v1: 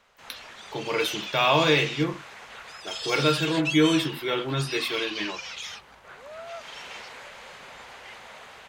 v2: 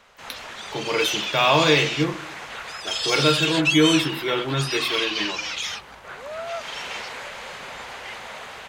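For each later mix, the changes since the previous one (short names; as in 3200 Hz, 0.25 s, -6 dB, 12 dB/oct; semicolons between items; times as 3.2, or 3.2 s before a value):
background +8.0 dB; reverb: on, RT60 0.95 s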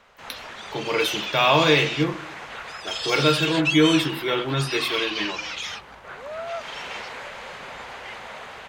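background: add high shelf 4000 Hz -7.5 dB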